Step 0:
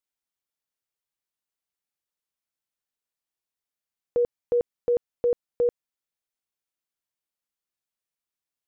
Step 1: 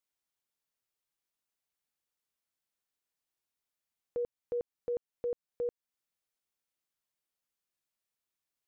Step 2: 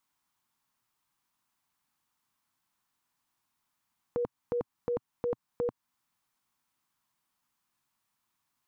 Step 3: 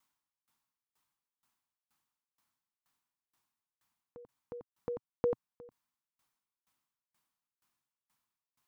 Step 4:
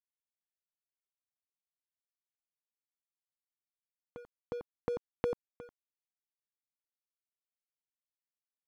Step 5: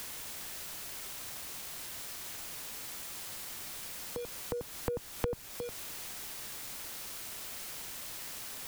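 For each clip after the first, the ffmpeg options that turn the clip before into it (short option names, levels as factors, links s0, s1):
-af "alimiter=level_in=1.78:limit=0.0631:level=0:latency=1:release=265,volume=0.562"
-af "equalizer=f=125:t=o:w=1:g=6,equalizer=f=250:t=o:w=1:g=7,equalizer=f=500:t=o:w=1:g=-9,equalizer=f=1000:t=o:w=1:g=12,volume=2.24"
-af "aeval=exprs='val(0)*pow(10,-30*if(lt(mod(2.1*n/s,1),2*abs(2.1)/1000),1-mod(2.1*n/s,1)/(2*abs(2.1)/1000),(mod(2.1*n/s,1)-2*abs(2.1)/1000)/(1-2*abs(2.1)/1000))/20)':c=same,volume=1.5"
-af "acompressor=threshold=0.0126:ratio=4,aeval=exprs='sgn(val(0))*max(abs(val(0))-0.0015,0)':c=same,volume=2.37"
-filter_complex "[0:a]aeval=exprs='val(0)+0.5*0.0119*sgn(val(0))':c=same,acrossover=split=130[s0][s1];[s1]acompressor=threshold=0.00355:ratio=2.5[s2];[s0][s2]amix=inputs=2:normalize=0,volume=2.99"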